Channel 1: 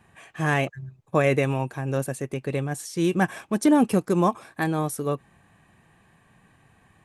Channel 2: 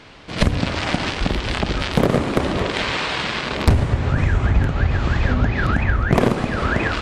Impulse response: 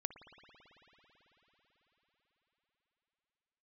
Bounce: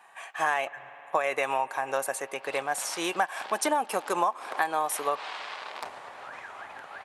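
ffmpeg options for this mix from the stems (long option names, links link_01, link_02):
-filter_complex "[0:a]volume=2dB,asplit=3[link_01][link_02][link_03];[link_02]volume=-11.5dB[link_04];[1:a]adelay=2150,volume=-18dB,asplit=2[link_05][link_06];[link_06]volume=-10dB[link_07];[link_03]apad=whole_len=404269[link_08];[link_05][link_08]sidechaincompress=threshold=-31dB:ratio=8:attack=16:release=115[link_09];[2:a]atrim=start_sample=2205[link_10];[link_04][link_07]amix=inputs=2:normalize=0[link_11];[link_11][link_10]afir=irnorm=-1:irlink=0[link_12];[link_01][link_09][link_12]amix=inputs=3:normalize=0,highpass=frequency=820:width_type=q:width=2,acompressor=threshold=-22dB:ratio=12"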